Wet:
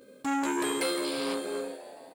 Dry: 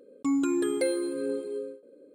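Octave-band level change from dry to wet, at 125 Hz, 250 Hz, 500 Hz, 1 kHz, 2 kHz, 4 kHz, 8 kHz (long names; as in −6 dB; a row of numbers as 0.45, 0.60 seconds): can't be measured, −4.0 dB, −3.0 dB, +10.5 dB, +6.0 dB, +10.0 dB, +4.0 dB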